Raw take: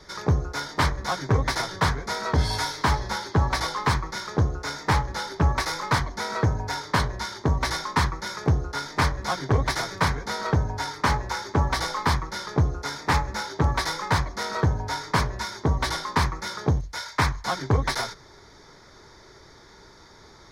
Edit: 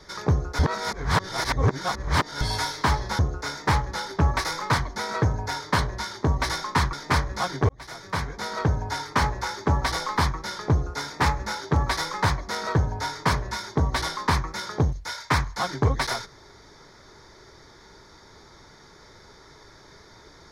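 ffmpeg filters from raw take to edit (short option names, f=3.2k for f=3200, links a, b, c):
-filter_complex "[0:a]asplit=6[a][b][c][d][e][f];[a]atrim=end=0.592[g];[b]atrim=start=0.588:end=2.412,asetpts=PTS-STARTPTS,areverse[h];[c]atrim=start=2.408:end=3.192[i];[d]atrim=start=4.398:end=8.142[j];[e]atrim=start=8.808:end=9.57,asetpts=PTS-STARTPTS,afade=t=out:st=0.758:d=0.004:c=hsin[k];[f]atrim=start=9.57,asetpts=PTS-STARTPTS,afade=t=in:d=1.29:c=qsin[l];[g][h]acrossfade=d=0.004:c1=hsin:c2=hsin[m];[m][i]acrossfade=d=0.004:c1=hsin:c2=hsin[n];[n][j]acrossfade=d=0.004:c1=hsin:c2=hsin[o];[k][l]concat=n=2:v=0:a=1[p];[o][p]acrossfade=d=0.004:c1=hsin:c2=hsin"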